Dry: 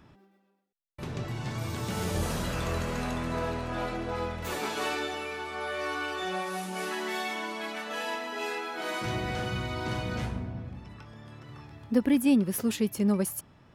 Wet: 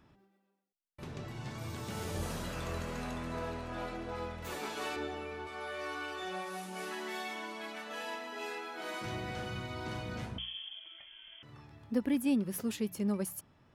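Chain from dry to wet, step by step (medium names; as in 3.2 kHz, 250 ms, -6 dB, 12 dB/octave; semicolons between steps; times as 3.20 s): 4.96–5.47 s: tilt EQ -2.5 dB/octave; 10.38–11.43 s: frequency inversion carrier 3.3 kHz; hum notches 60/120/180 Hz; trim -7 dB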